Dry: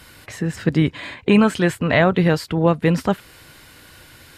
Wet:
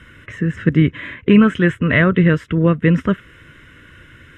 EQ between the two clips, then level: low-pass 3.8 kHz 12 dB/octave; static phaser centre 1.9 kHz, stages 4; band-stop 2.4 kHz, Q 11; +5.0 dB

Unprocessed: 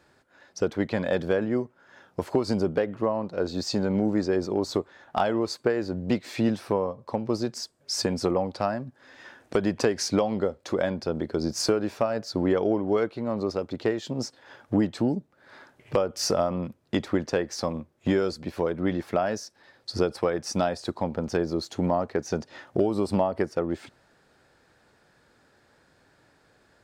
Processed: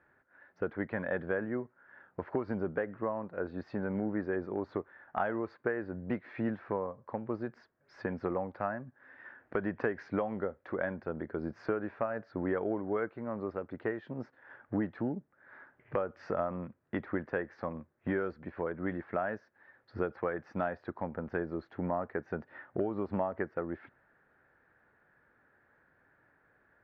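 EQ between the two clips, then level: four-pole ladder low-pass 2 kHz, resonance 50%; 0.0 dB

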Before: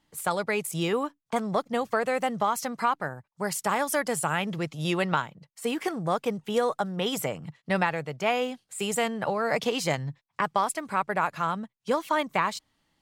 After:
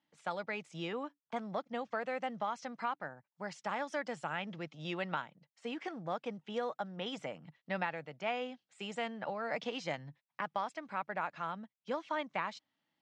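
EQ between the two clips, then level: distance through air 51 m; cabinet simulation 200–5900 Hz, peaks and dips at 410 Hz -7 dB, 1.1 kHz -4 dB, 4.5 kHz -4 dB; -9.0 dB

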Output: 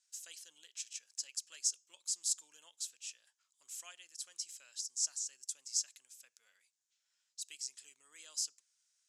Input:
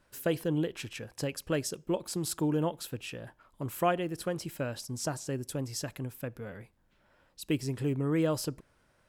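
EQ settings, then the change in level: band-pass filter 6.8 kHz, Q 3; distance through air 73 m; differentiator; +14.5 dB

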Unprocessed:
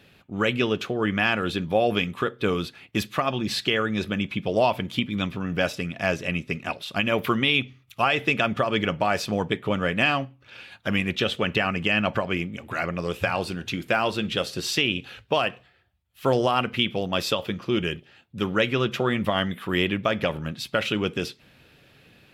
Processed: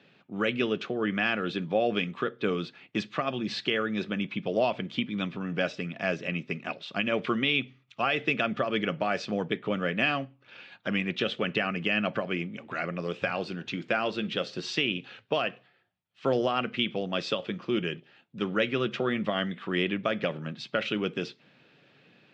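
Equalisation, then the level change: dynamic bell 930 Hz, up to -7 dB, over -42 dBFS, Q 3.3; high-pass 140 Hz 24 dB/octave; Bessel low-pass 4.1 kHz, order 8; -3.5 dB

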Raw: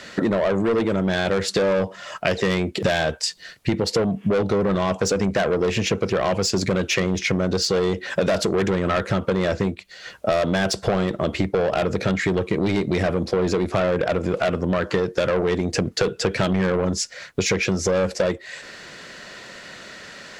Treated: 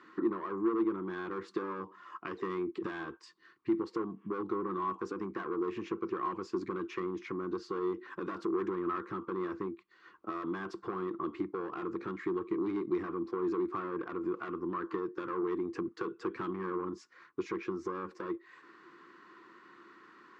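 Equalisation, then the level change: two resonant band-passes 610 Hz, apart 1.7 oct; -3.0 dB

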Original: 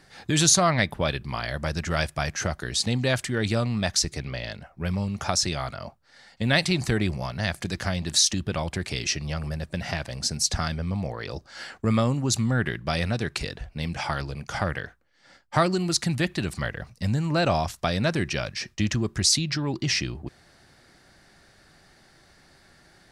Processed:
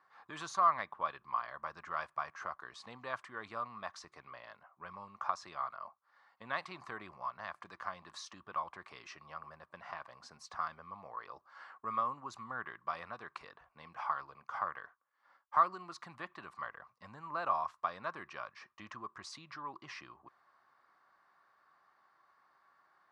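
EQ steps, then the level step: band-pass filter 1.1 kHz, Q 9.1; +4.0 dB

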